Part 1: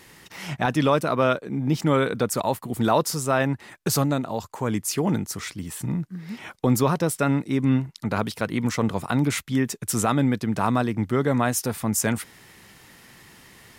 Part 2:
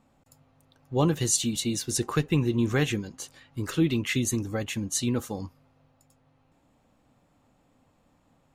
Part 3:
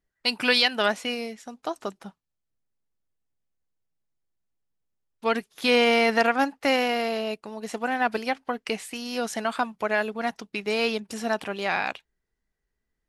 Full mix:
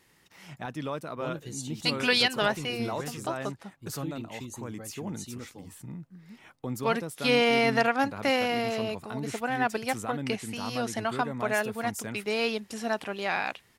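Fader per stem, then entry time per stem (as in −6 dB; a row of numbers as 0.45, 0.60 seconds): −14.0, −14.5, −3.0 decibels; 0.00, 0.25, 1.60 seconds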